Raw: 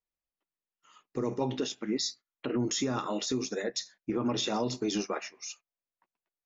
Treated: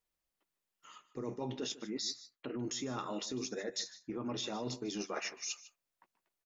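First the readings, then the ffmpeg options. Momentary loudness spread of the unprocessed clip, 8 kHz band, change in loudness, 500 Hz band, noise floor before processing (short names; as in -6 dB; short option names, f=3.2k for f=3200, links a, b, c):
11 LU, n/a, -7.0 dB, -8.0 dB, under -85 dBFS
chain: -af "areverse,acompressor=threshold=-42dB:ratio=8,areverse,aecho=1:1:151:0.141,volume=5.5dB"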